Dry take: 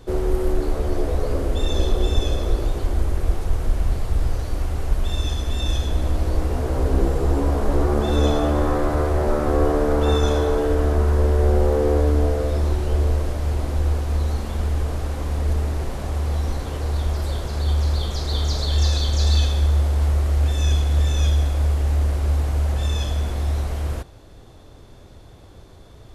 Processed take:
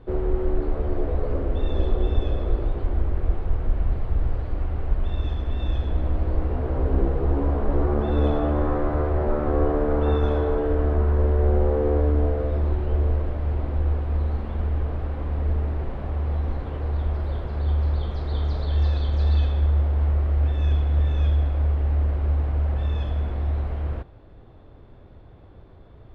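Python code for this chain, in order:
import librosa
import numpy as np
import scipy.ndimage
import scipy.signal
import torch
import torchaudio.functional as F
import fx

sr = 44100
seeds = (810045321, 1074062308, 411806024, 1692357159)

y = fx.air_absorb(x, sr, metres=470.0)
y = y * 10.0 ** (-2.0 / 20.0)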